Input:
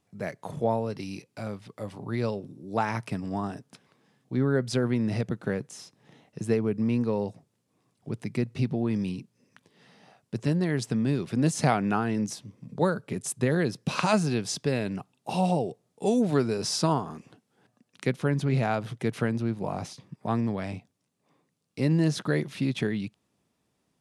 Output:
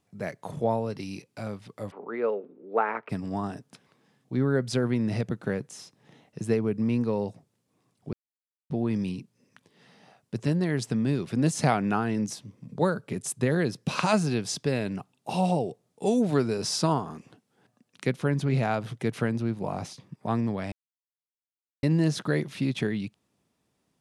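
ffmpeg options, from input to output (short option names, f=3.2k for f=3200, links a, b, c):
-filter_complex "[0:a]asplit=3[a][b][c];[a]afade=t=out:st=1.9:d=0.02[d];[b]highpass=f=270:w=0.5412,highpass=f=270:w=1.3066,equalizer=f=300:t=q:w=4:g=-6,equalizer=f=450:t=q:w=4:g=8,equalizer=f=1.3k:t=q:w=4:g=6,lowpass=f=2.4k:w=0.5412,lowpass=f=2.4k:w=1.3066,afade=t=in:st=1.9:d=0.02,afade=t=out:st=3.09:d=0.02[e];[c]afade=t=in:st=3.09:d=0.02[f];[d][e][f]amix=inputs=3:normalize=0,asplit=5[g][h][i][j][k];[g]atrim=end=8.13,asetpts=PTS-STARTPTS,afade=t=out:st=8.126:d=0.004:c=hsin[l];[h]atrim=start=8.13:end=8.7,asetpts=PTS-STARTPTS,volume=0[m];[i]atrim=start=8.7:end=20.72,asetpts=PTS-STARTPTS,afade=t=in:d=0.004:c=hsin,afade=t=out:st=12.016:d=0.004:c=hsin[n];[j]atrim=start=20.72:end=21.83,asetpts=PTS-STARTPTS,volume=0[o];[k]atrim=start=21.83,asetpts=PTS-STARTPTS,afade=t=in:d=0.004:c=hsin[p];[l][m][n][o][p]concat=n=5:v=0:a=1"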